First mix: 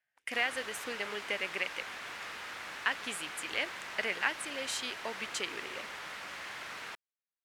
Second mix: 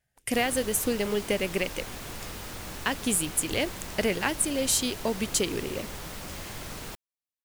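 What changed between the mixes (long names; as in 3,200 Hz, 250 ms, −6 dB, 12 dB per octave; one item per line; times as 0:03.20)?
background −4.0 dB
master: remove resonant band-pass 1,800 Hz, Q 1.2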